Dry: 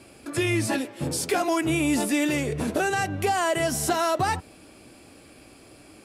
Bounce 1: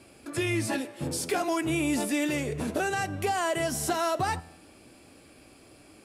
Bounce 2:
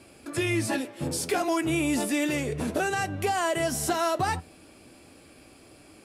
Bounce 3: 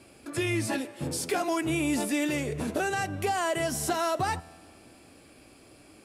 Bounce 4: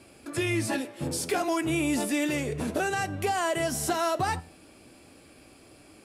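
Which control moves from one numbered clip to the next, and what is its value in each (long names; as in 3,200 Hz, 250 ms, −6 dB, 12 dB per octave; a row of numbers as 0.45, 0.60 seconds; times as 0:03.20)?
tuned comb filter, decay: 0.92, 0.18, 2, 0.44 seconds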